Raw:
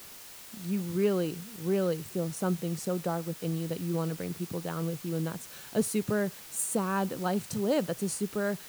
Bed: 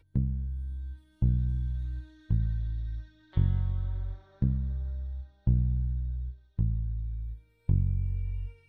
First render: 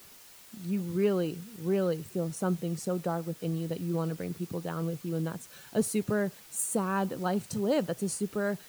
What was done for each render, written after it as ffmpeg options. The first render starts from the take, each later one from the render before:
ffmpeg -i in.wav -af "afftdn=noise_reduction=6:noise_floor=-48" out.wav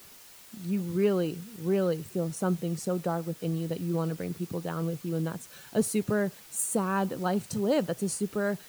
ffmpeg -i in.wav -af "volume=1.5dB" out.wav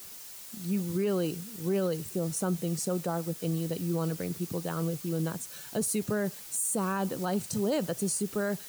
ffmpeg -i in.wav -filter_complex "[0:a]acrossover=split=780|4600[link_01][link_02][link_03];[link_03]acontrast=79[link_04];[link_01][link_02][link_04]amix=inputs=3:normalize=0,alimiter=limit=-21dB:level=0:latency=1:release=35" out.wav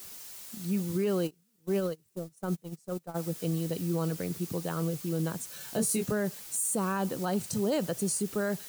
ffmpeg -i in.wav -filter_complex "[0:a]asplit=3[link_01][link_02][link_03];[link_01]afade=type=out:start_time=1.26:duration=0.02[link_04];[link_02]agate=range=-29dB:threshold=-29dB:ratio=16:release=100:detection=peak,afade=type=in:start_time=1.26:duration=0.02,afade=type=out:start_time=3.14:duration=0.02[link_05];[link_03]afade=type=in:start_time=3.14:duration=0.02[link_06];[link_04][link_05][link_06]amix=inputs=3:normalize=0,asettb=1/sr,asplit=3[link_07][link_08][link_09];[link_07]atrim=end=5.584[link_10];[link_08]atrim=start=5.58:end=6.12,asetpts=PTS-STARTPTS,afade=type=in:duration=0.004:curve=qsin,afade=type=out:start_time=0.536:duration=0.004:curve=qsin,asplit=2[link_11][link_12];[link_12]adelay=22,volume=-4dB[link_13];[link_11][link_13]amix=inputs=2:normalize=0,atrim=end_sample=23814[link_14];[link_09]atrim=start=6.116[link_15];[link_10][link_14]acrossfade=duration=0.004:curve1=hsin:curve2=qsin[link_16];[link_16][link_15]acrossfade=duration=0.004:curve1=qsin:curve2=hsin" out.wav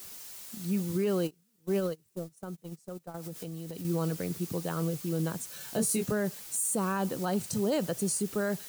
ffmpeg -i in.wav -filter_complex "[0:a]asettb=1/sr,asplit=3[link_01][link_02][link_03];[link_01]atrim=end=2.404[link_04];[link_02]atrim=start=2.4:end=3.85,asetpts=PTS-STARTPTS,afade=type=in:duration=0.004:curve=qsin,afade=type=out:start_time=1.446:duration=0.004:curve=qsin,acompressor=threshold=-35dB:ratio=12:attack=3.2:release=140:knee=1:detection=peak[link_05];[link_03]atrim=start=3.846[link_06];[link_04][link_05]acrossfade=duration=0.004:curve1=hsin:curve2=qsin[link_07];[link_07][link_06]acrossfade=duration=0.004:curve1=qsin:curve2=hsin" out.wav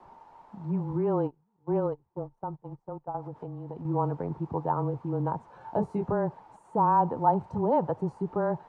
ffmpeg -i in.wav -af "afreqshift=-18,lowpass=frequency=900:width_type=q:width=10" out.wav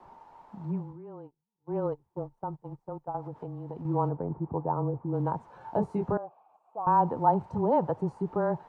ffmpeg -i in.wav -filter_complex "[0:a]asettb=1/sr,asplit=3[link_01][link_02][link_03];[link_01]atrim=end=4.094[link_04];[link_02]atrim=start=4.09:end=5.14,asetpts=PTS-STARTPTS,afade=type=in:duration=0.004:curve=qsin,afade=type=out:start_time=1.046:duration=0.004:curve=qsin,lowpass=1000[link_05];[link_03]atrim=start=5.136[link_06];[link_04][link_05]acrossfade=duration=0.004:curve1=hsin:curve2=qsin[link_07];[link_07][link_06]acrossfade=duration=0.004:curve1=qsin:curve2=hsin,asettb=1/sr,asplit=3[link_08][link_09][link_10];[link_08]atrim=end=6.174[link_11];[link_09]atrim=start=6.17:end=6.87,asetpts=PTS-STARTPTS,afade=type=in:duration=0.004:curve=qsin,afade=type=out:start_time=0.696:duration=0.004:curve=qsin,asplit=3[link_12][link_13][link_14];[link_12]bandpass=frequency=730:width_type=q:width=8,volume=0dB[link_15];[link_13]bandpass=frequency=1090:width_type=q:width=8,volume=-6dB[link_16];[link_14]bandpass=frequency=2440:width_type=q:width=8,volume=-9dB[link_17];[link_15][link_16][link_17]amix=inputs=3:normalize=0[link_18];[link_10]atrim=start=6.866[link_19];[link_11][link_18]acrossfade=duration=0.004:curve1=hsin:curve2=qsin[link_20];[link_20][link_19]acrossfade=duration=0.004:curve1=qsin:curve2=hsin,asplit=3[link_21][link_22][link_23];[link_21]atrim=end=0.97,asetpts=PTS-STARTPTS,afade=type=out:start_time=0.64:duration=0.33:silence=0.125893[link_24];[link_22]atrim=start=0.97:end=1.58,asetpts=PTS-STARTPTS,volume=-18dB[link_25];[link_23]atrim=start=1.58,asetpts=PTS-STARTPTS,afade=type=in:duration=0.33:silence=0.125893[link_26];[link_24][link_25][link_26]concat=n=3:v=0:a=1" out.wav

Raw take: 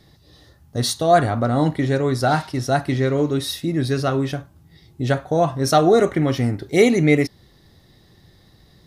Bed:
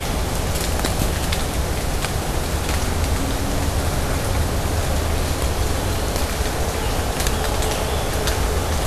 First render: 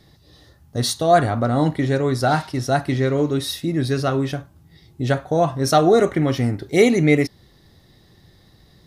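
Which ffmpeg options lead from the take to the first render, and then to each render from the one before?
ffmpeg -i in.wav -af anull out.wav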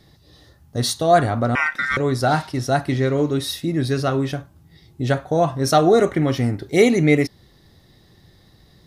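ffmpeg -i in.wav -filter_complex "[0:a]asettb=1/sr,asplit=3[link_01][link_02][link_03];[link_01]atrim=end=1.554[link_04];[link_02]atrim=start=1.55:end=1.97,asetpts=PTS-STARTPTS,afade=type=in:duration=0.004:curve=qsin,afade=type=out:start_time=0.416:duration=0.004:curve=qsin,aeval=exprs='val(0)*sin(2*PI*1700*n/s)':channel_layout=same[link_05];[link_03]atrim=start=1.966[link_06];[link_04][link_05]acrossfade=duration=0.004:curve1=hsin:curve2=qsin[link_07];[link_07][link_06]acrossfade=duration=0.004:curve1=qsin:curve2=hsin" out.wav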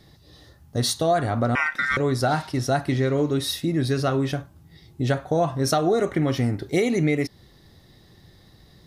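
ffmpeg -i in.wav -af "alimiter=limit=-7.5dB:level=0:latency=1:release=266,acompressor=threshold=-20dB:ratio=2" out.wav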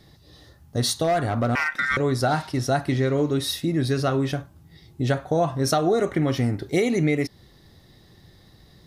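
ffmpeg -i in.wav -filter_complex "[0:a]asettb=1/sr,asplit=3[link_01][link_02][link_03];[link_01]atrim=end=1.044[link_04];[link_02]atrim=start=1.04:end=1.8,asetpts=PTS-STARTPTS,afade=type=in:duration=0.004:curve=qsin,afade=type=out:start_time=0.756:duration=0.004:curve=qsin,volume=17dB,asoftclip=hard,volume=-17dB[link_05];[link_03]atrim=start=1.796[link_06];[link_04][link_05]acrossfade=duration=0.004:curve1=hsin:curve2=qsin[link_07];[link_07][link_06]acrossfade=duration=0.004:curve1=qsin:curve2=hsin" out.wav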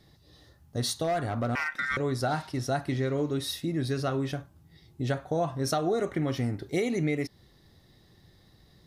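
ffmpeg -i in.wav -af "volume=-6.5dB" out.wav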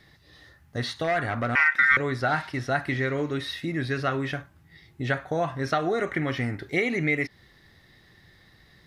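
ffmpeg -i in.wav -filter_complex "[0:a]acrossover=split=4300[link_01][link_02];[link_02]acompressor=threshold=-52dB:ratio=4:attack=1:release=60[link_03];[link_01][link_03]amix=inputs=2:normalize=0,equalizer=frequency=1900:width_type=o:width=1.3:gain=13" out.wav

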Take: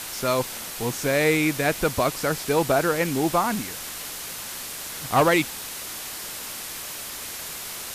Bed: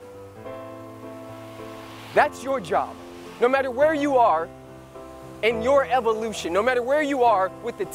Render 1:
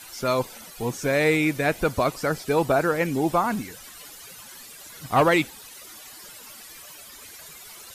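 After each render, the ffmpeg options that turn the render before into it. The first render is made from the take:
ffmpeg -i in.wav -af "afftdn=noise_reduction=14:noise_floor=-35" out.wav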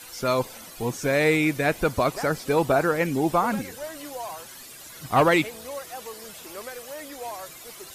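ffmpeg -i in.wav -i bed.wav -filter_complex "[1:a]volume=-17.5dB[link_01];[0:a][link_01]amix=inputs=2:normalize=0" out.wav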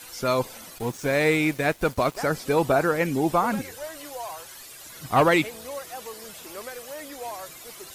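ffmpeg -i in.wav -filter_complex "[0:a]asettb=1/sr,asplit=3[link_01][link_02][link_03];[link_01]atrim=end=0.784[link_04];[link_02]atrim=start=0.78:end=2.19,asetpts=PTS-STARTPTS,afade=type=in:duration=0.004:curve=qsin,afade=type=out:start_time=1.406:duration=0.004:curve=qsin,aeval=exprs='sgn(val(0))*max(abs(val(0))-0.00891,0)':channel_layout=same[link_05];[link_03]atrim=start=2.186[link_06];[link_04][link_05]acrossfade=duration=0.004:curve1=hsin:curve2=qsin[link_07];[link_07][link_06]acrossfade=duration=0.004:curve1=qsin:curve2=hsin,asettb=1/sr,asplit=3[link_08][link_09][link_10];[link_08]atrim=end=3.614[link_11];[link_09]atrim=start=3.61:end=4.85,asetpts=PTS-STARTPTS,afade=type=in:duration=0.004:curve=qsin,afade=type=out:start_time=1.236:duration=0.004:curve=qsin,equalizer=frequency=210:width=1.5:gain=-9.5[link_12];[link_10]atrim=start=4.846[link_13];[link_11][link_12]acrossfade=duration=0.004:curve1=hsin:curve2=qsin[link_14];[link_14][link_13]acrossfade=duration=0.004:curve1=qsin:curve2=hsin" out.wav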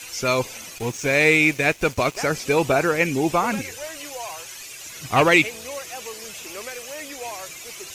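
ffmpeg -i in.wav -af "equalizer=frequency=100:width_type=o:width=0.67:gain=5,equalizer=frequency=400:width_type=o:width=0.67:gain=3,equalizer=frequency=2500:width_type=o:width=0.67:gain=11,equalizer=frequency=6300:width_type=o:width=0.67:gain=10" out.wav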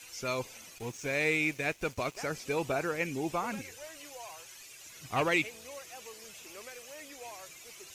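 ffmpeg -i in.wav -af "volume=-12.5dB" out.wav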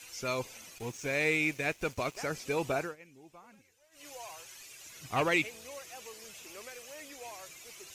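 ffmpeg -i in.wav -filter_complex "[0:a]asplit=3[link_01][link_02][link_03];[link_01]atrim=end=2.96,asetpts=PTS-STARTPTS,afade=type=out:start_time=2.78:duration=0.18:silence=0.0841395[link_04];[link_02]atrim=start=2.96:end=3.91,asetpts=PTS-STARTPTS,volume=-21.5dB[link_05];[link_03]atrim=start=3.91,asetpts=PTS-STARTPTS,afade=type=in:duration=0.18:silence=0.0841395[link_06];[link_04][link_05][link_06]concat=n=3:v=0:a=1" out.wav

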